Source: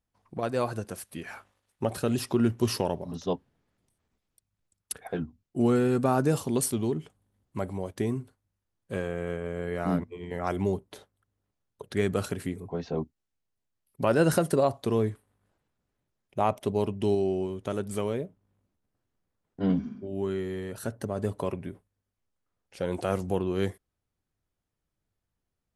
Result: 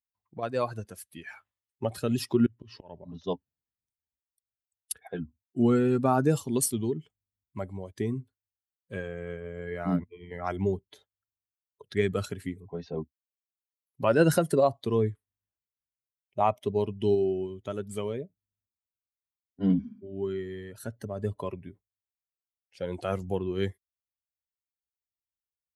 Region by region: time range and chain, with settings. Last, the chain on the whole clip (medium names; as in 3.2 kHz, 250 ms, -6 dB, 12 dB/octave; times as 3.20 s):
2.46–3.24 s: low-pass 3.5 kHz + slow attack 264 ms
whole clip: expander on every frequency bin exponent 1.5; high-pass 70 Hz; trim +3 dB